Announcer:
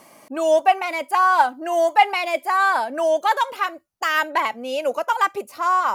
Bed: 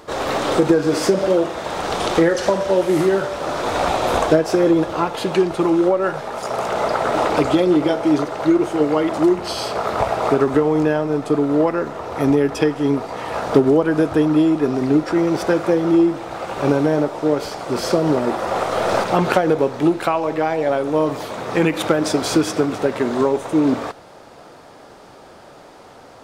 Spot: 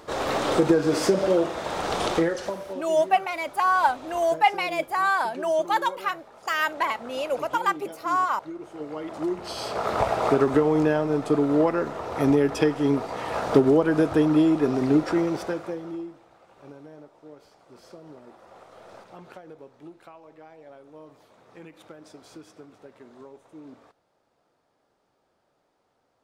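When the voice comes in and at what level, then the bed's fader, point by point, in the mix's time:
2.45 s, -4.5 dB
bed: 2.06 s -4.5 dB
2.96 s -22.5 dB
8.51 s -22.5 dB
9.91 s -4 dB
15.1 s -4 dB
16.41 s -28.5 dB

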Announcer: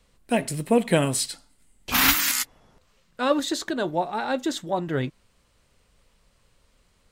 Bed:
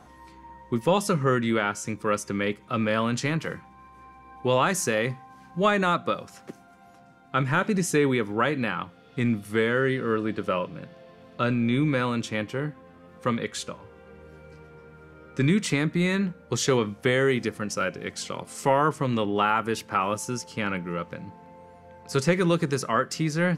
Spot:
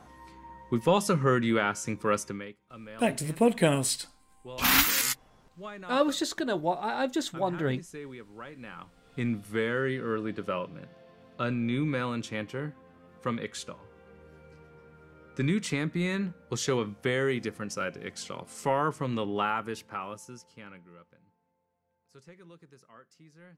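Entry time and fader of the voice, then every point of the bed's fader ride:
2.70 s, -3.0 dB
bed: 2.24 s -1.5 dB
2.53 s -20 dB
8.52 s -20 dB
9.11 s -5.5 dB
19.45 s -5.5 dB
21.62 s -30 dB

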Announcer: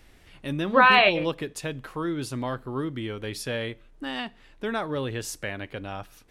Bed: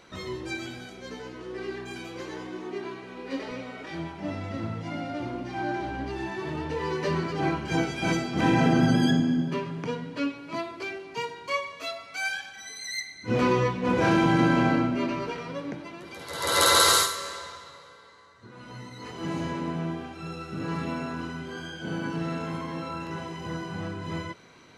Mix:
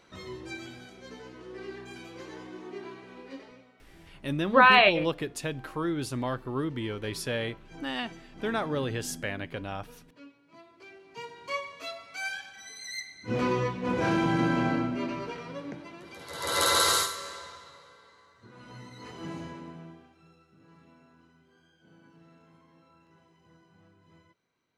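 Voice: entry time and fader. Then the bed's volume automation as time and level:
3.80 s, -1.0 dB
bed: 3.18 s -6 dB
3.75 s -22 dB
10.53 s -22 dB
11.48 s -4.5 dB
19.13 s -4.5 dB
20.58 s -26.5 dB

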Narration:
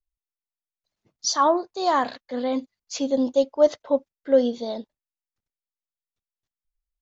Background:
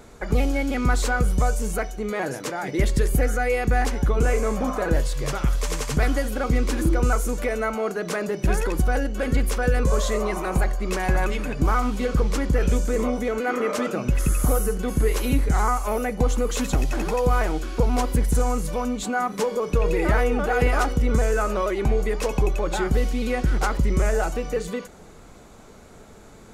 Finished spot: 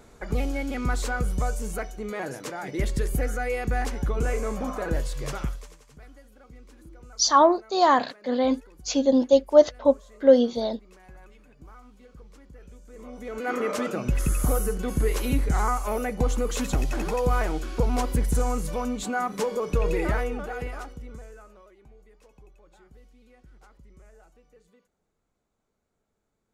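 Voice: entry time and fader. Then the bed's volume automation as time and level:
5.95 s, +2.5 dB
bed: 5.43 s -5.5 dB
5.79 s -27.5 dB
12.81 s -27.5 dB
13.51 s -3 dB
19.97 s -3 dB
21.82 s -32 dB

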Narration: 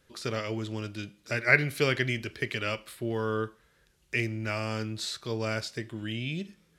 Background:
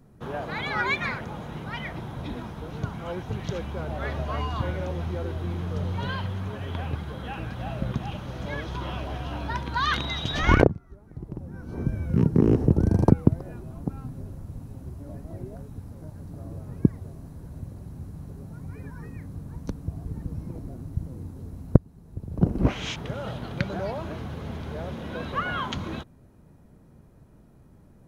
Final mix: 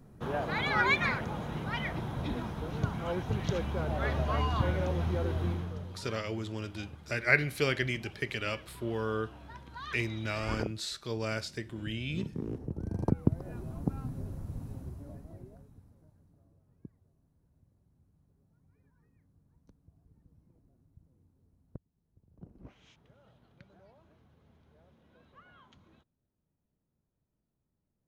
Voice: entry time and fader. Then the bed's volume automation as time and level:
5.80 s, -3.0 dB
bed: 5.47 s -0.5 dB
6 s -18 dB
12.72 s -18 dB
13.6 s -1.5 dB
14.72 s -1.5 dB
16.61 s -29.5 dB

